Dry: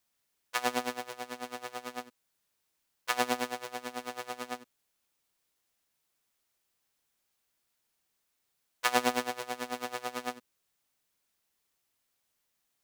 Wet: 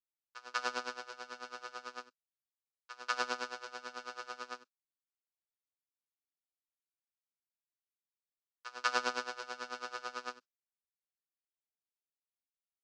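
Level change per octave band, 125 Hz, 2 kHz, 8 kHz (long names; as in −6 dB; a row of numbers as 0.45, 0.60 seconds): below −15 dB, −2.5 dB, −8.0 dB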